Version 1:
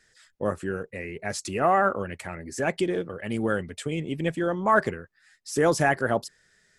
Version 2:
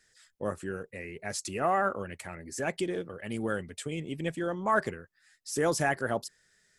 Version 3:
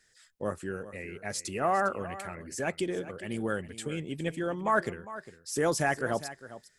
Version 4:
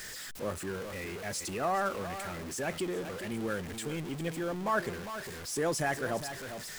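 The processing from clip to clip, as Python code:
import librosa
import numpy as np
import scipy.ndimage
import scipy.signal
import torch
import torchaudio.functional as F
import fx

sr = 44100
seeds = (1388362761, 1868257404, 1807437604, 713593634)

y1 = fx.high_shelf(x, sr, hz=4700.0, db=6.5)
y1 = y1 * librosa.db_to_amplitude(-6.0)
y2 = y1 + 10.0 ** (-15.0 / 20.0) * np.pad(y1, (int(404 * sr / 1000.0), 0))[:len(y1)]
y3 = y2 + 0.5 * 10.0 ** (-32.5 / 20.0) * np.sign(y2)
y3 = y3 * librosa.db_to_amplitude(-5.0)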